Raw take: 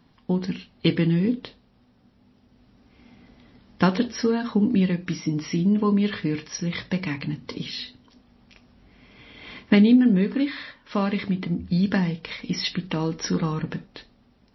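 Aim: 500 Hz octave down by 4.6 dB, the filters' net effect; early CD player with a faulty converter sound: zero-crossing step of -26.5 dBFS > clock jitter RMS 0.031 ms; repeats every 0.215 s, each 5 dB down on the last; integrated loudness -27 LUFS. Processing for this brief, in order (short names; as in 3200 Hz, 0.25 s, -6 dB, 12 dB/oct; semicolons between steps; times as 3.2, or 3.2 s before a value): bell 500 Hz -6 dB; feedback echo 0.215 s, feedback 56%, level -5 dB; zero-crossing step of -26.5 dBFS; clock jitter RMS 0.031 ms; gain -4.5 dB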